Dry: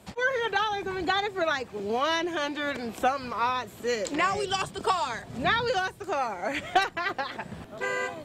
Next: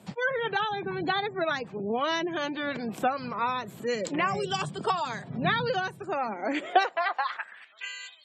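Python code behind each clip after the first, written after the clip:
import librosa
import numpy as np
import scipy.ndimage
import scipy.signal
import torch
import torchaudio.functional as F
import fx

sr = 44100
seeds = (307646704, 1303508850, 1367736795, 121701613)

y = fx.spec_gate(x, sr, threshold_db=-30, keep='strong')
y = fx.filter_sweep_highpass(y, sr, from_hz=150.0, to_hz=3600.0, start_s=6.11, end_s=7.98, q=3.2)
y = y * 10.0 ** (-2.0 / 20.0)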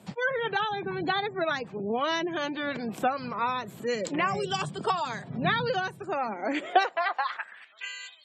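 y = x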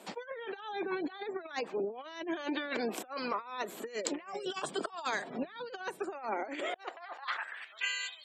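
y = scipy.signal.sosfilt(scipy.signal.butter(4, 290.0, 'highpass', fs=sr, output='sos'), x)
y = fx.over_compress(y, sr, threshold_db=-35.0, ratio=-0.5)
y = y * 10.0 ** (-2.0 / 20.0)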